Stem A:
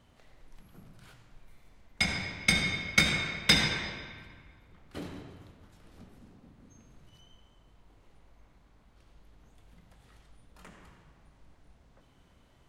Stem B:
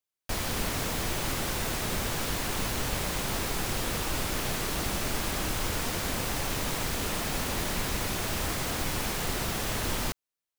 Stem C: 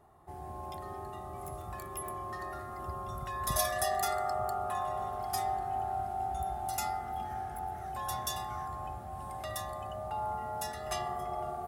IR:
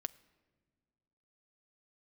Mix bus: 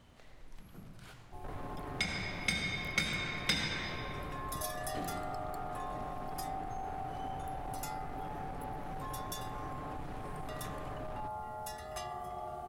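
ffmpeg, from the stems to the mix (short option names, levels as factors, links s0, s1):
-filter_complex "[0:a]volume=1.26[s0];[1:a]lowpass=1100,aecho=1:1:7:0.8,asoftclip=type=hard:threshold=0.0299,adelay=1150,volume=0.376[s1];[2:a]adelay=1050,volume=0.596[s2];[s0][s1][s2]amix=inputs=3:normalize=0,acompressor=threshold=0.0126:ratio=2"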